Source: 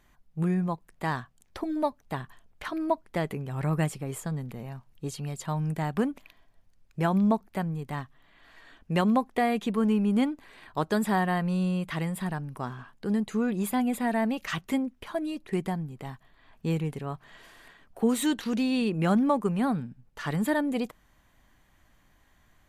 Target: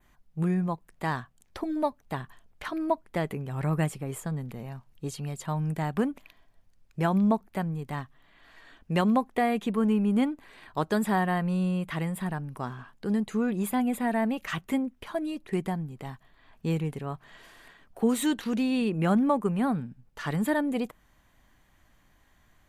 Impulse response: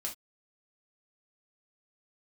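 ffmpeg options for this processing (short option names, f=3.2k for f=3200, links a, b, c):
-af "adynamicequalizer=threshold=0.00158:dfrequency=5000:dqfactor=1.3:tfrequency=5000:tqfactor=1.3:attack=5:release=100:ratio=0.375:range=3:mode=cutabove:tftype=bell"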